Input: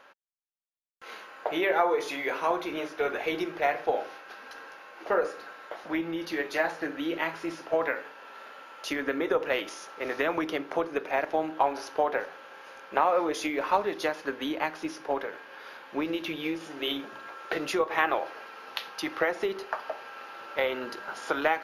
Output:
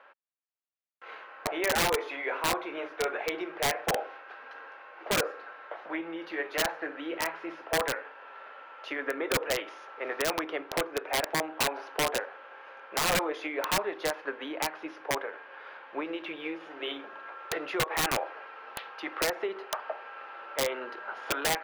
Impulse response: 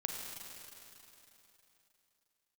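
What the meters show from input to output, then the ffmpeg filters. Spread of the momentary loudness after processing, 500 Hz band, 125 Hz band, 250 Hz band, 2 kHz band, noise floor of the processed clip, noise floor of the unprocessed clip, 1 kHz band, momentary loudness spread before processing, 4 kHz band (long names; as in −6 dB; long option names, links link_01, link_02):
17 LU, −4.0 dB, +5.0 dB, −5.0 dB, −0.5 dB, −50 dBFS, −49 dBFS, −3.5 dB, 17 LU, +4.0 dB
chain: -filter_complex "[0:a]acrossover=split=350 3100:gain=0.141 1 0.0631[link_01][link_02][link_03];[link_01][link_02][link_03]amix=inputs=3:normalize=0,aeval=exprs='(mod(10*val(0)+1,2)-1)/10':channel_layout=same"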